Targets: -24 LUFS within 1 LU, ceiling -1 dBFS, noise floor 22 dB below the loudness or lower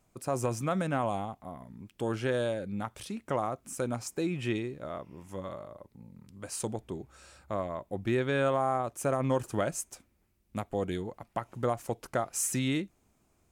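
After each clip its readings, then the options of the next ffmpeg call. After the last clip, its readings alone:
loudness -33.0 LUFS; peak -17.5 dBFS; loudness target -24.0 LUFS
-> -af "volume=9dB"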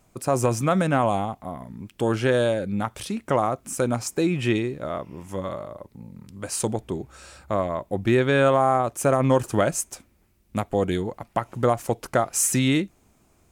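loudness -24.0 LUFS; peak -8.5 dBFS; noise floor -62 dBFS

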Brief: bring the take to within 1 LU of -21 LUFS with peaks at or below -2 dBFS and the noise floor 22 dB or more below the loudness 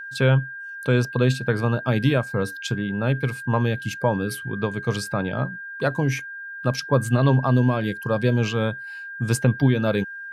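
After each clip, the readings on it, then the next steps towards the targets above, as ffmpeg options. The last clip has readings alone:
steady tone 1600 Hz; tone level -33 dBFS; loudness -23.0 LUFS; peak -7.5 dBFS; loudness target -21.0 LUFS
-> -af "bandreject=f=1.6k:w=30"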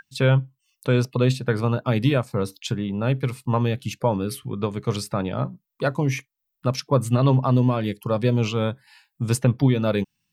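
steady tone none; loudness -23.5 LUFS; peak -8.0 dBFS; loudness target -21.0 LUFS
-> -af "volume=2.5dB"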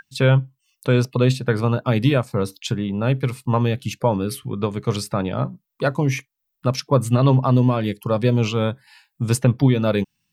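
loudness -21.0 LUFS; peak -5.5 dBFS; noise floor -77 dBFS

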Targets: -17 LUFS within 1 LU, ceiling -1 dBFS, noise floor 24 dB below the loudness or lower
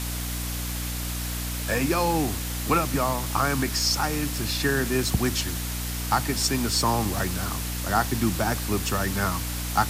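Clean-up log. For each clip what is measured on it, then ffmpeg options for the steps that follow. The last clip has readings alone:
hum 60 Hz; harmonics up to 300 Hz; hum level -29 dBFS; noise floor -30 dBFS; noise floor target -50 dBFS; loudness -25.5 LUFS; peak -9.0 dBFS; loudness target -17.0 LUFS
-> -af "bandreject=f=60:t=h:w=4,bandreject=f=120:t=h:w=4,bandreject=f=180:t=h:w=4,bandreject=f=240:t=h:w=4,bandreject=f=300:t=h:w=4"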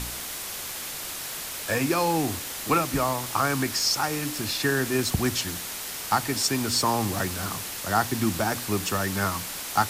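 hum none; noise floor -35 dBFS; noise floor target -50 dBFS
-> -af "afftdn=nr=15:nf=-35"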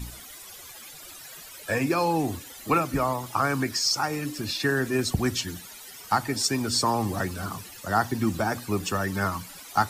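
noise floor -45 dBFS; noise floor target -51 dBFS
-> -af "afftdn=nr=6:nf=-45"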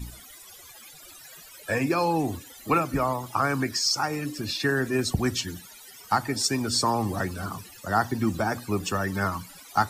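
noise floor -48 dBFS; noise floor target -51 dBFS
-> -af "afftdn=nr=6:nf=-48"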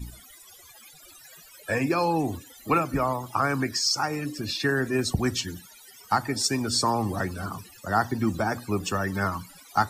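noise floor -51 dBFS; loudness -26.5 LUFS; peak -9.5 dBFS; loudness target -17.0 LUFS
-> -af "volume=9.5dB,alimiter=limit=-1dB:level=0:latency=1"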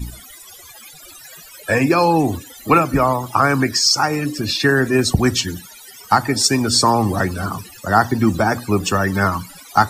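loudness -17.0 LUFS; peak -1.0 dBFS; noise floor -41 dBFS

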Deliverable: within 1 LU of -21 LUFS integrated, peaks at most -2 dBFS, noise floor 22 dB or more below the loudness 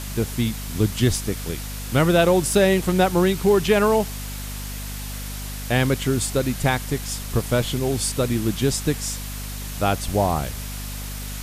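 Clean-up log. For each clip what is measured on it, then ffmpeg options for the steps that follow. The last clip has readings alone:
hum 50 Hz; harmonics up to 250 Hz; hum level -30 dBFS; noise floor -32 dBFS; noise floor target -45 dBFS; loudness -22.5 LUFS; peak -3.5 dBFS; loudness target -21.0 LUFS
-> -af "bandreject=f=50:t=h:w=6,bandreject=f=100:t=h:w=6,bandreject=f=150:t=h:w=6,bandreject=f=200:t=h:w=6,bandreject=f=250:t=h:w=6"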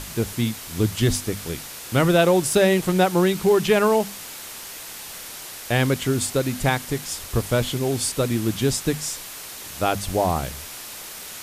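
hum none; noise floor -37 dBFS; noise floor target -44 dBFS
-> -af "afftdn=nr=7:nf=-37"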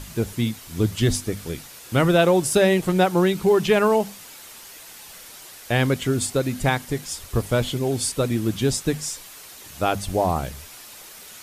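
noise floor -43 dBFS; noise floor target -44 dBFS
-> -af "afftdn=nr=6:nf=-43"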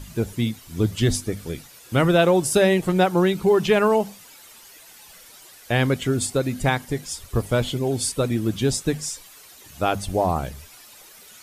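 noise floor -47 dBFS; loudness -22.0 LUFS; peak -4.5 dBFS; loudness target -21.0 LUFS
-> -af "volume=1dB"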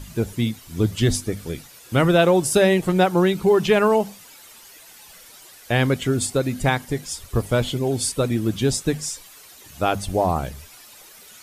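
loudness -21.0 LUFS; peak -3.5 dBFS; noise floor -46 dBFS

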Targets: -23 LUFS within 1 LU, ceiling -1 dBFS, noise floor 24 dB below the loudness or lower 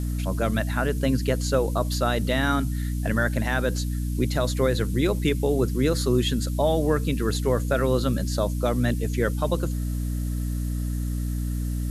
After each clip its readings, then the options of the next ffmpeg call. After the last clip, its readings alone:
hum 60 Hz; harmonics up to 300 Hz; hum level -24 dBFS; noise floor -27 dBFS; noise floor target -49 dBFS; loudness -25.0 LUFS; peak -10.0 dBFS; loudness target -23.0 LUFS
-> -af "bandreject=f=60:t=h:w=6,bandreject=f=120:t=h:w=6,bandreject=f=180:t=h:w=6,bandreject=f=240:t=h:w=6,bandreject=f=300:t=h:w=6"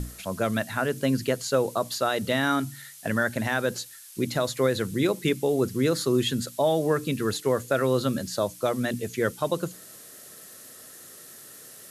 hum none; noise floor -47 dBFS; noise floor target -51 dBFS
-> -af "afftdn=nr=6:nf=-47"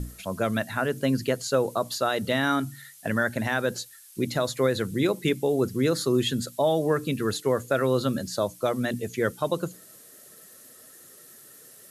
noise floor -50 dBFS; noise floor target -51 dBFS
-> -af "afftdn=nr=6:nf=-50"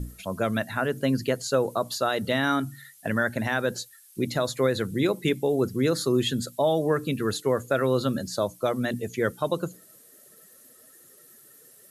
noise floor -54 dBFS; loudness -26.5 LUFS; peak -11.5 dBFS; loudness target -23.0 LUFS
-> -af "volume=3.5dB"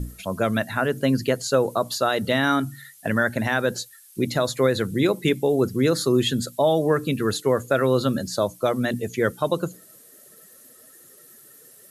loudness -23.0 LUFS; peak -8.0 dBFS; noise floor -50 dBFS

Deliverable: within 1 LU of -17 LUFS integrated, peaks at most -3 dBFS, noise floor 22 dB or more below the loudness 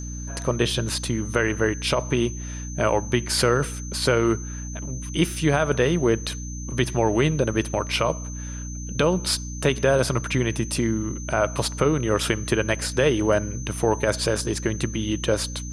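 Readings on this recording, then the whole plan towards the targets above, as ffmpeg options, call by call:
hum 60 Hz; harmonics up to 300 Hz; hum level -31 dBFS; steady tone 6200 Hz; tone level -38 dBFS; loudness -24.0 LUFS; peak -7.5 dBFS; loudness target -17.0 LUFS
-> -af "bandreject=f=60:t=h:w=6,bandreject=f=120:t=h:w=6,bandreject=f=180:t=h:w=6,bandreject=f=240:t=h:w=6,bandreject=f=300:t=h:w=6"
-af "bandreject=f=6.2k:w=30"
-af "volume=7dB,alimiter=limit=-3dB:level=0:latency=1"

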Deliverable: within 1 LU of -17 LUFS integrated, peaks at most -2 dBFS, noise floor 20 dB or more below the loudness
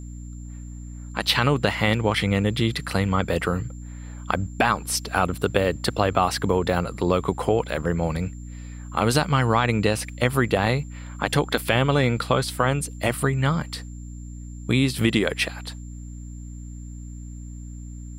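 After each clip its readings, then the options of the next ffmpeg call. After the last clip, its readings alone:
hum 60 Hz; harmonics up to 300 Hz; hum level -34 dBFS; steady tone 7300 Hz; tone level -51 dBFS; loudness -23.0 LUFS; peak -3.5 dBFS; loudness target -17.0 LUFS
-> -af "bandreject=f=60:t=h:w=4,bandreject=f=120:t=h:w=4,bandreject=f=180:t=h:w=4,bandreject=f=240:t=h:w=4,bandreject=f=300:t=h:w=4"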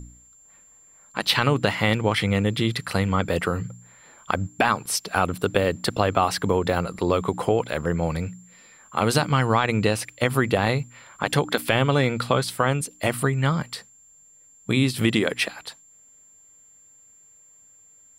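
hum none; steady tone 7300 Hz; tone level -51 dBFS
-> -af "bandreject=f=7.3k:w=30"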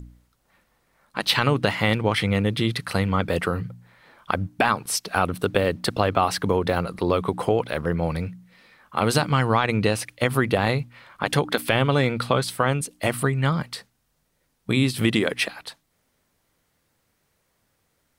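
steady tone none; loudness -23.5 LUFS; peak -3.5 dBFS; loudness target -17.0 LUFS
-> -af "volume=6.5dB,alimiter=limit=-2dB:level=0:latency=1"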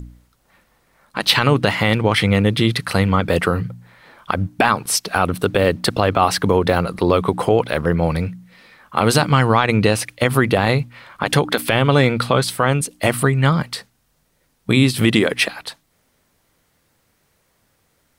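loudness -17.5 LUFS; peak -2.0 dBFS; noise floor -64 dBFS

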